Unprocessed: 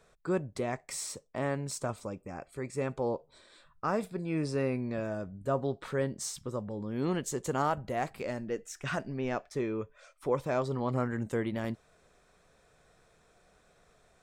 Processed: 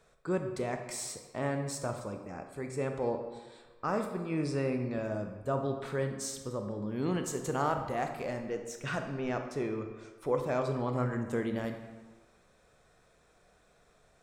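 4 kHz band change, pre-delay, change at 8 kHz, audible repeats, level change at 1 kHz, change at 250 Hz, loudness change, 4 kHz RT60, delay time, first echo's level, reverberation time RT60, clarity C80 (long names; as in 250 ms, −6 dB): −1.0 dB, 25 ms, −1.0 dB, no echo audible, −0.5 dB, −0.5 dB, −0.5 dB, 0.90 s, no echo audible, no echo audible, 1.4 s, 9.0 dB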